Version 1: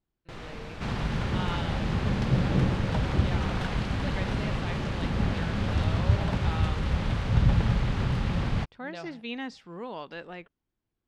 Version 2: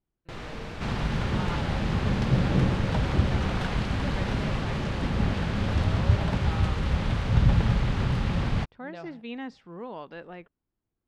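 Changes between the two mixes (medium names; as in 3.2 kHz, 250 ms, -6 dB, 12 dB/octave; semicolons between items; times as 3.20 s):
speech: add treble shelf 2.8 kHz -11.5 dB; reverb: on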